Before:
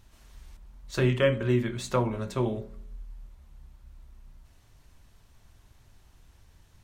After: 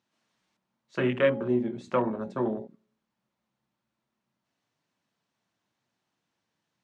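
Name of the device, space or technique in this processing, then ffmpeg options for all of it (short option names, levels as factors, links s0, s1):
parallel distortion: -filter_complex "[0:a]asplit=2[s0][s1];[s1]asoftclip=type=hard:threshold=0.0501,volume=0.282[s2];[s0][s2]amix=inputs=2:normalize=0,highpass=f=170:w=0.5412,highpass=f=170:w=1.3066,bandreject=f=400:w=12,afwtdn=0.02,lowpass=6200"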